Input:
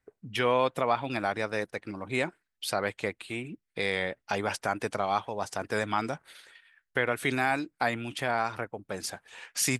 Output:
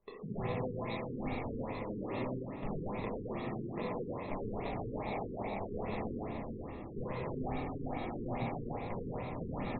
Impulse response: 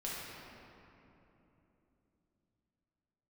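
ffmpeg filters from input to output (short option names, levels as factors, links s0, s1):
-filter_complex "[0:a]acrusher=samples=29:mix=1:aa=0.000001,asettb=1/sr,asplit=3[s0][s1][s2];[s0]atrim=end=0.734[s3];[s1]atrim=start=0.73:end=1.3,asetpts=PTS-STARTPTS,afade=t=in:d=0.004:c=qsin,afade=t=out:st=0.566:d=0.004:c=qsin,equalizer=f=650:w=1:g=-9[s4];[s2]atrim=start=1.296[s5];[s3][s4]acrossfade=d=0.004:c1=hsin:c2=qsin[s6];[s6][s5]acrossfade=d=0.004:c1=qsin:c2=hsin,acompressor=threshold=0.00631:ratio=8,aecho=1:1:118:0.422[s7];[1:a]atrim=start_sample=2205,asetrate=48510,aresample=44100[s8];[s7][s8]afir=irnorm=-1:irlink=0,afftfilt=real='re*lt(b*sr/1024,470*pow(4300/470,0.5+0.5*sin(2*PI*2.4*pts/sr)))':imag='im*lt(b*sr/1024,470*pow(4300/470,0.5+0.5*sin(2*PI*2.4*pts/sr)))':win_size=1024:overlap=0.75,volume=2.37"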